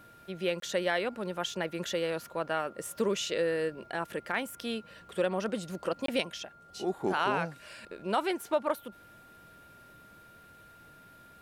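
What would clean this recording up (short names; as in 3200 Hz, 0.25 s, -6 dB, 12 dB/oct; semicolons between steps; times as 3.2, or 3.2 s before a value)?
notch 1400 Hz, Q 30; interpolate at 0.6/6.06, 23 ms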